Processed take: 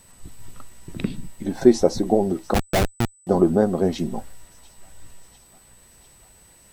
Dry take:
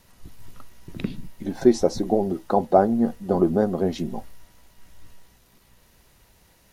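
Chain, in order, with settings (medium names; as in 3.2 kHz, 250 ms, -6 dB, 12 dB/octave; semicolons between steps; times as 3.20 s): feedback echo behind a high-pass 695 ms, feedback 72%, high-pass 2.2 kHz, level -20 dB; 2.54–3.27 s: Schmitt trigger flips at -17 dBFS; whistle 8 kHz -55 dBFS; trim +2.5 dB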